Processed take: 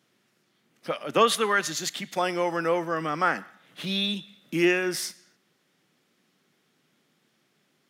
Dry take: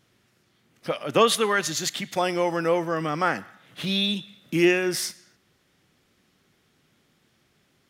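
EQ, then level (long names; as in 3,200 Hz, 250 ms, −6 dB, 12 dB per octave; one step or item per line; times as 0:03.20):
dynamic equaliser 1,400 Hz, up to +4 dB, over −34 dBFS, Q 1.2
high-pass filter 150 Hz 24 dB per octave
−3.0 dB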